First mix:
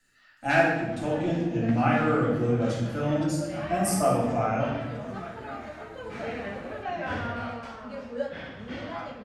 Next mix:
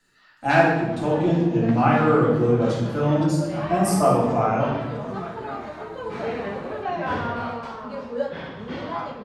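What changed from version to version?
master: add graphic EQ with 15 bands 160 Hz +8 dB, 400 Hz +9 dB, 1,000 Hz +10 dB, 4,000 Hz +5 dB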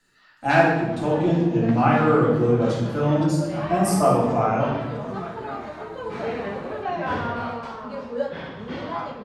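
nothing changed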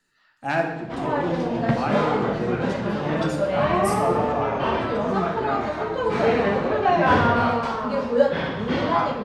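speech: send −9.5 dB
background +8.5 dB

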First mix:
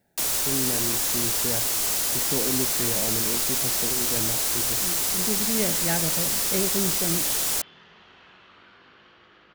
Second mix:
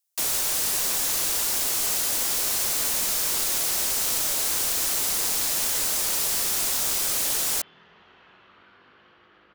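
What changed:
speech: muted
second sound: add high-shelf EQ 3,200 Hz −9.5 dB
master: add low-shelf EQ 410 Hz −3 dB

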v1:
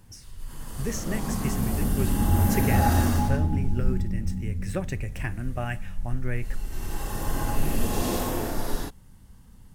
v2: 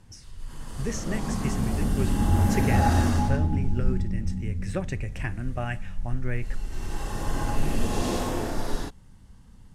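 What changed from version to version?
master: add low-pass filter 8,200 Hz 12 dB per octave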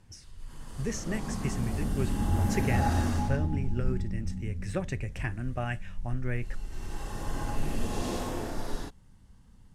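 background −5.5 dB
reverb: off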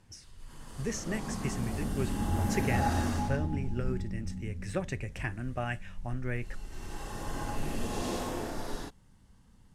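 master: add low-shelf EQ 140 Hz −5.5 dB

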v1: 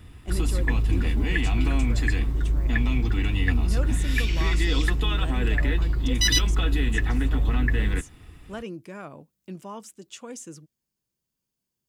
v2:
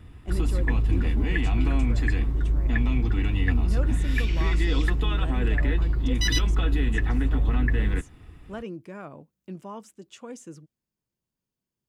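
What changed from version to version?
master: add high-shelf EQ 2,900 Hz −9 dB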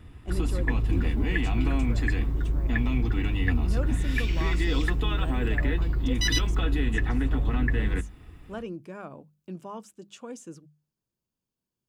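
speech: add parametric band 2,000 Hz −6.5 dB 0.23 octaves
second sound: remove low-pass filter 8,400 Hz
master: add mains-hum notches 50/100/150/200 Hz

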